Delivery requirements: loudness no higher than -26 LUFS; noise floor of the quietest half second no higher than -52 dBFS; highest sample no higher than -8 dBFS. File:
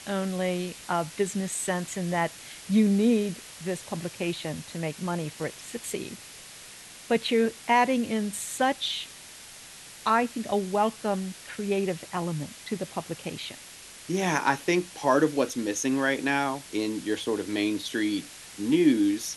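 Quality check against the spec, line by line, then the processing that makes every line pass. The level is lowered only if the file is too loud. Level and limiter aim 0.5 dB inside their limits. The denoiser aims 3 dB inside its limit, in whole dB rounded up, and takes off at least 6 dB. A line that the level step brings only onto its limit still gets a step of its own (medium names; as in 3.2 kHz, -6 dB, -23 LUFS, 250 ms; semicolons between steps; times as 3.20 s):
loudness -27.5 LUFS: pass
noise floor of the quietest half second -46 dBFS: fail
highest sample -9.0 dBFS: pass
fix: noise reduction 9 dB, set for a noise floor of -46 dBFS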